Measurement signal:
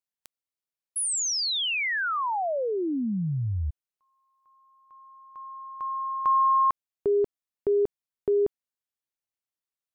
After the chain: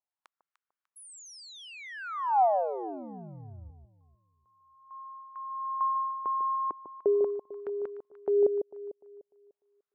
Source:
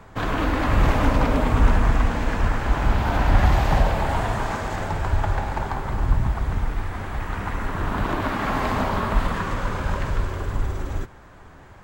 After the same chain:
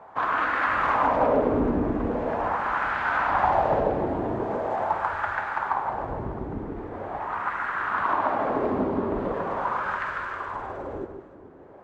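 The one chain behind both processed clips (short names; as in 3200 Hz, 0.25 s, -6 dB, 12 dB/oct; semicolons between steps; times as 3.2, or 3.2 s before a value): wah 0.42 Hz 330–1500 Hz, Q 2.4; echo with dull and thin repeats by turns 0.149 s, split 980 Hz, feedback 56%, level -7 dB; gain +7 dB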